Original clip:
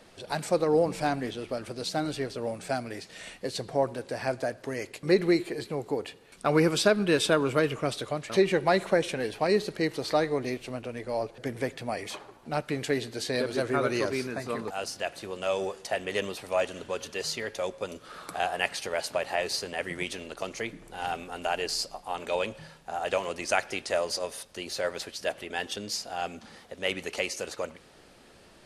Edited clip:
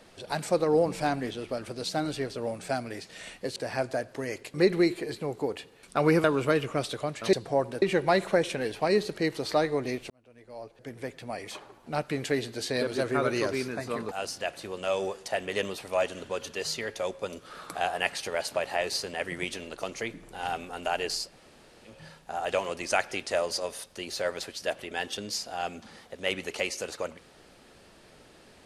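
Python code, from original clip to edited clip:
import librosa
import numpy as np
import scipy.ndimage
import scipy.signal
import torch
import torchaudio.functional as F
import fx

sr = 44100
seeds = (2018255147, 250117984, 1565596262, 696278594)

y = fx.edit(x, sr, fx.move(start_s=3.56, length_s=0.49, to_s=8.41),
    fx.cut(start_s=6.73, length_s=0.59),
    fx.fade_in_span(start_s=10.69, length_s=1.91),
    fx.room_tone_fill(start_s=21.84, length_s=0.71, crossfade_s=0.24), tone=tone)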